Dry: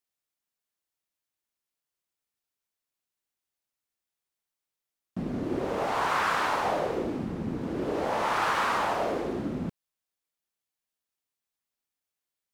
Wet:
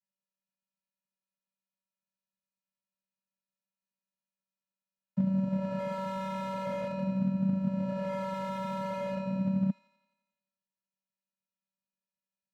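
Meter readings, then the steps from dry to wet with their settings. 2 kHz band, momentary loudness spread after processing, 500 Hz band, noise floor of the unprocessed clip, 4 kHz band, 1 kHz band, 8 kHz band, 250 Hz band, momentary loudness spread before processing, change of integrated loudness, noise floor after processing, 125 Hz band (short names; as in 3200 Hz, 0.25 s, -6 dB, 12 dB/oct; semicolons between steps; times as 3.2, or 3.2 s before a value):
-15.5 dB, 6 LU, -5.0 dB, under -85 dBFS, -13.0 dB, -10.5 dB, under -10 dB, +3.0 dB, 8 LU, -3.5 dB, under -85 dBFS, +5.0 dB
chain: frequency shift +30 Hz; vocoder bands 8, square 191 Hz; on a send: thin delay 87 ms, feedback 63%, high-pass 1800 Hz, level -4.5 dB; on the sum: slew limiter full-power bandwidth 18 Hz; gain -1 dB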